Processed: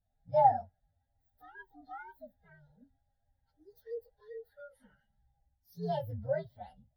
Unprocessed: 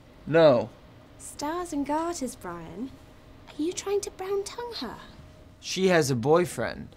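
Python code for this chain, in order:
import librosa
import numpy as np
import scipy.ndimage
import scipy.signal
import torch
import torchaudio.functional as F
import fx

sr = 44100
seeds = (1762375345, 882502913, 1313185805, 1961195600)

y = fx.partial_stretch(x, sr, pct=129)
y = fx.fixed_phaser(y, sr, hz=1700.0, stages=8)
y = fx.spectral_expand(y, sr, expansion=1.5)
y = y * librosa.db_to_amplitude(-3.0)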